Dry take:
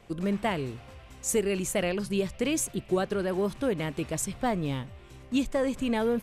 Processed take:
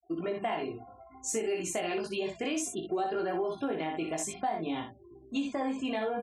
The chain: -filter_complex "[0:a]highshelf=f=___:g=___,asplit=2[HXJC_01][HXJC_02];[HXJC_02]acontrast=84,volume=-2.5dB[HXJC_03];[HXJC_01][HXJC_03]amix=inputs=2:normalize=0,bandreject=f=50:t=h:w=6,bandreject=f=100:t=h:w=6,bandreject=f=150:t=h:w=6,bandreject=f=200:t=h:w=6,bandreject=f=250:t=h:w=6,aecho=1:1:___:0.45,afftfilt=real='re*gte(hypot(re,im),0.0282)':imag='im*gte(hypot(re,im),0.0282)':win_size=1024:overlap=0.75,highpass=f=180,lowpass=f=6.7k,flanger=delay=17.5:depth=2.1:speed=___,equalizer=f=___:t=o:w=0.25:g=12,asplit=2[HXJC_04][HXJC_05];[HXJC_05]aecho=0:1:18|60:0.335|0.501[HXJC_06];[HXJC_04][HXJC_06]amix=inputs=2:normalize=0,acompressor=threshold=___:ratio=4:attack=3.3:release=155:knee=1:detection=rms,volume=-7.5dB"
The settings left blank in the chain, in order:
2.9k, 3, 2.9, 0.59, 780, -20dB